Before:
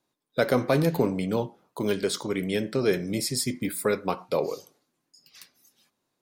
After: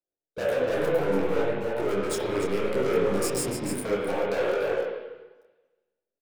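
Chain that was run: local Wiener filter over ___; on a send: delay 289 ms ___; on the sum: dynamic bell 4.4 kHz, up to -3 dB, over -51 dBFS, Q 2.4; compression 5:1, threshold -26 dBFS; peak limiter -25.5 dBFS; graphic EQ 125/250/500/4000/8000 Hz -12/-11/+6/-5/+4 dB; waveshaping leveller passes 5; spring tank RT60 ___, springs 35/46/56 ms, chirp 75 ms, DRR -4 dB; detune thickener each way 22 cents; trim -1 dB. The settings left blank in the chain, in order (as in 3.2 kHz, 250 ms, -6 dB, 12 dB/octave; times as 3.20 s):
41 samples, -15 dB, 1.2 s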